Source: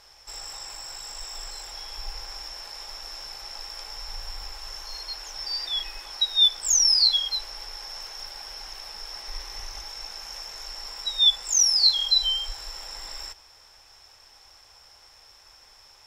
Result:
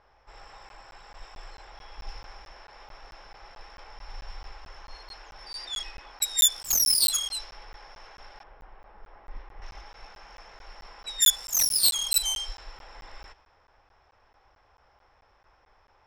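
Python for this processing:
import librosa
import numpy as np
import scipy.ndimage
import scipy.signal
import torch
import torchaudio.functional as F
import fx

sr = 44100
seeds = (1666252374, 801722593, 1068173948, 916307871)

y = fx.self_delay(x, sr, depth_ms=0.23)
y = fx.spacing_loss(y, sr, db_at_10k=33, at=(8.43, 9.62))
y = fx.env_lowpass(y, sr, base_hz=1400.0, full_db=-21.5)
y = fx.buffer_crackle(y, sr, first_s=0.69, period_s=0.22, block=512, kind='zero')
y = y * 10.0 ** (-1.5 / 20.0)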